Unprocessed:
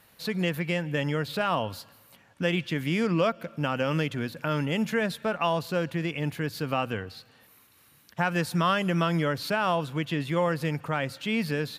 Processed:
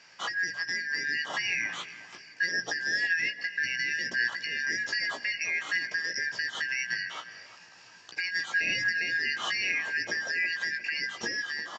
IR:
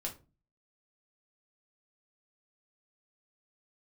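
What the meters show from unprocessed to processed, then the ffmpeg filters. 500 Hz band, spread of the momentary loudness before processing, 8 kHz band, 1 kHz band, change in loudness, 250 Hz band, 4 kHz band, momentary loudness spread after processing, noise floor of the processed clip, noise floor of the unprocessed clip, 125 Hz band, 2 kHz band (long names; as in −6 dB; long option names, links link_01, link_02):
−19.5 dB, 6 LU, +5.0 dB, −13.5 dB, −1.0 dB, −21.5 dB, +2.0 dB, 7 LU, −53 dBFS, −60 dBFS, −26.0 dB, +7.0 dB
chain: -filter_complex "[0:a]afftfilt=real='real(if(lt(b,272),68*(eq(floor(b/68),0)*2+eq(floor(b/68),1)*0+eq(floor(b/68),2)*3+eq(floor(b/68),3)*1)+mod(b,68),b),0)':imag='imag(if(lt(b,272),68*(eq(floor(b/68),0)*2+eq(floor(b/68),1)*0+eq(floor(b/68),2)*3+eq(floor(b/68),3)*1)+mod(b,68),b),0)':win_size=2048:overlap=0.75,highpass=frequency=110:width=0.5412,highpass=frequency=110:width=1.3066,bandreject=frequency=60:width_type=h:width=6,bandreject=frequency=120:width_type=h:width=6,bandreject=frequency=180:width_type=h:width=6,bandreject=frequency=240:width_type=h:width=6,acompressor=threshold=-30dB:ratio=6,alimiter=level_in=4dB:limit=-24dB:level=0:latency=1:release=466,volume=-4dB,dynaudnorm=framelen=110:gausssize=13:maxgain=3.5dB,aresample=16000,aresample=44100,asplit=2[link_01][link_02];[link_02]adelay=17,volume=-6dB[link_03];[link_01][link_03]amix=inputs=2:normalize=0,asplit=2[link_04][link_05];[link_05]adelay=353,lowpass=frequency=1600:poles=1,volume=-13dB,asplit=2[link_06][link_07];[link_07]adelay=353,lowpass=frequency=1600:poles=1,volume=0.41,asplit=2[link_08][link_09];[link_09]adelay=353,lowpass=frequency=1600:poles=1,volume=0.41,asplit=2[link_10][link_11];[link_11]adelay=353,lowpass=frequency=1600:poles=1,volume=0.41[link_12];[link_04][link_06][link_08][link_10][link_12]amix=inputs=5:normalize=0,volume=4.5dB"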